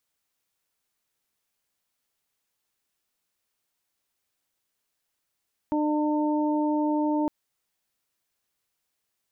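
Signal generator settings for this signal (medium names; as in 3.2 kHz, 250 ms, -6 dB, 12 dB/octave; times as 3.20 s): steady additive tone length 1.56 s, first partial 301 Hz, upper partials -8/-7 dB, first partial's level -23 dB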